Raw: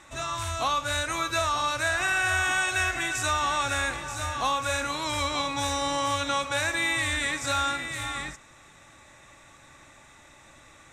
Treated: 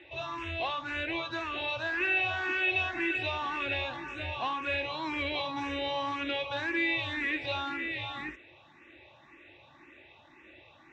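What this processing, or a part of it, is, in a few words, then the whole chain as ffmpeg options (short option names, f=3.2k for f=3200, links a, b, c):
barber-pole phaser into a guitar amplifier: -filter_complex "[0:a]asplit=2[a][b];[b]afreqshift=1.9[c];[a][c]amix=inputs=2:normalize=1,asoftclip=type=tanh:threshold=-25dB,highpass=83,equalizer=f=130:t=q:w=4:g=-4,equalizer=f=180:t=q:w=4:g=-8,equalizer=f=350:t=q:w=4:g=10,equalizer=f=1.3k:t=q:w=4:g=-10,equalizer=f=2.7k:t=q:w=4:g=8,lowpass=f=3.6k:w=0.5412,lowpass=f=3.6k:w=1.3066"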